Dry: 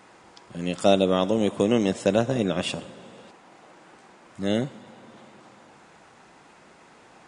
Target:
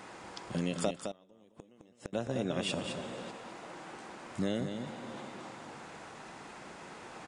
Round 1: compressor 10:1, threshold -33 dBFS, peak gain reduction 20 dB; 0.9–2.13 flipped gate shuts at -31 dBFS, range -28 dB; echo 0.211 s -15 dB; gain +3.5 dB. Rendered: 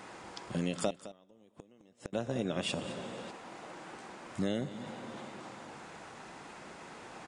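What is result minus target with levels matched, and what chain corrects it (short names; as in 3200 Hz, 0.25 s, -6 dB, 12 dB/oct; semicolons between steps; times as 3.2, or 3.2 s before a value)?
echo-to-direct -8 dB
compressor 10:1, threshold -33 dBFS, peak gain reduction 20 dB; 0.9–2.13 flipped gate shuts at -31 dBFS, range -28 dB; echo 0.211 s -7 dB; gain +3.5 dB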